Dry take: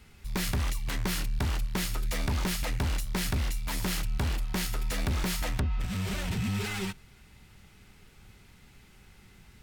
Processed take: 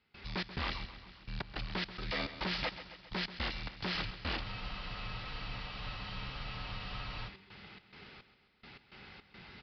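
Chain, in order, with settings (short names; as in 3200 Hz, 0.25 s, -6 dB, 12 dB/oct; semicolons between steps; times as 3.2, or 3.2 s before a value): HPF 320 Hz 6 dB/oct; in parallel at -1 dB: compressor, threshold -44 dBFS, peak gain reduction 13.5 dB; on the sum: limiter -27 dBFS, peak gain reduction 10.5 dB; step gate ".xx.xx...x.xx" 106 bpm -24 dB; on a send: feedback echo 0.134 s, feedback 59%, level -13 dB; on the sum: downsampling 11025 Hz; spectral freeze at 4.45, 2.84 s; gain +2.5 dB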